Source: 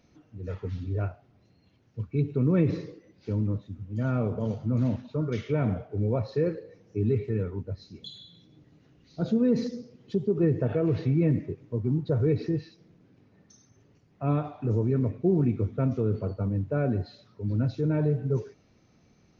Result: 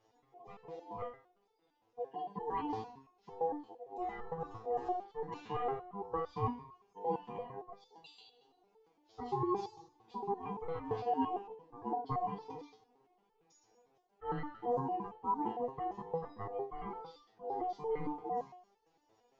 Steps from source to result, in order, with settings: ring modulator 600 Hz; de-hum 72.12 Hz, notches 27; resonator arpeggio 8.8 Hz 110–440 Hz; trim +4 dB

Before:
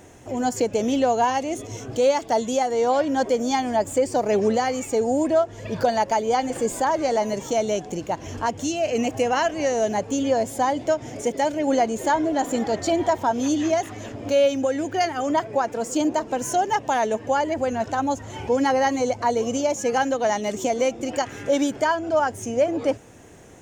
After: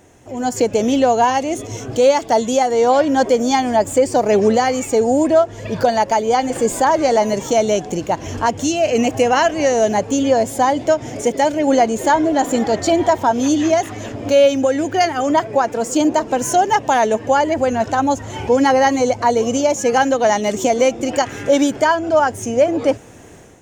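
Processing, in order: level rider gain up to 11.5 dB; trim -2 dB

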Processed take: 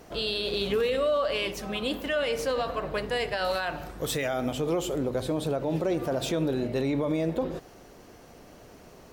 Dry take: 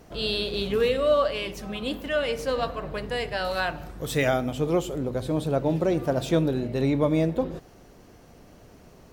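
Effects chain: tone controls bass -6 dB, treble 0 dB; peak limiter -22 dBFS, peak gain reduction 11 dB; trim +3 dB

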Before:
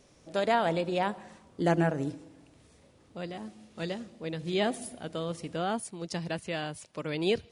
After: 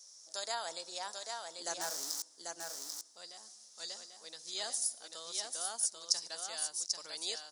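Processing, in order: 1.81–2.22 s: jump at every zero crossing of -31.5 dBFS; high-pass 980 Hz 12 dB/octave; resonant high shelf 3.8 kHz +14 dB, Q 3; delay 791 ms -4.5 dB; trim -7.5 dB

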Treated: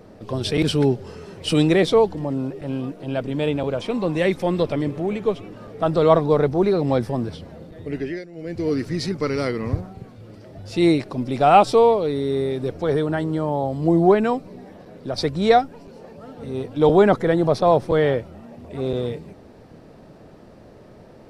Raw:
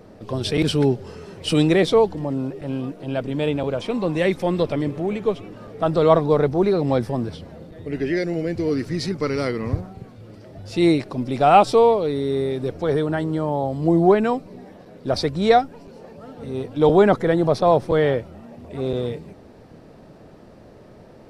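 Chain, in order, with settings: 7.91–8.68 s: dip -17.5 dB, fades 0.36 s; 14.44–15.18 s: three bands compressed up and down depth 40%

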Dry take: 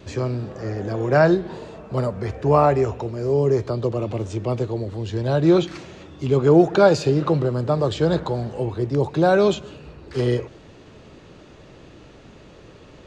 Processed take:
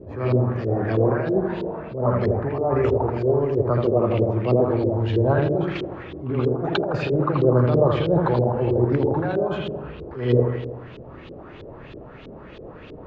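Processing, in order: compressor with a negative ratio -20 dBFS, ratio -0.5; feedback echo behind a low-pass 81 ms, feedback 60%, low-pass 2.2 kHz, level -3.5 dB; LFO low-pass saw up 3.1 Hz 380–3800 Hz; attacks held to a fixed rise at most 100 dB/s; trim -1 dB

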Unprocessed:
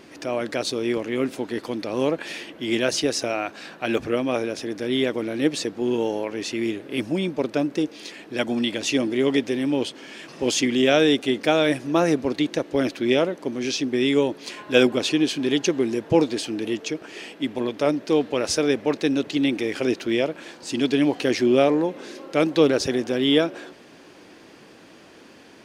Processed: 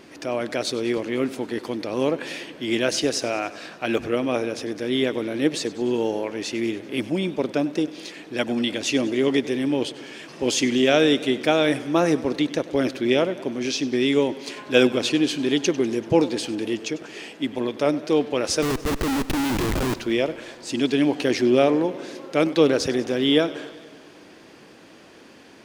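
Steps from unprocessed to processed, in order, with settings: 18.62–19.94 s: Schmitt trigger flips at -28 dBFS; modulated delay 97 ms, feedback 68%, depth 77 cents, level -18 dB

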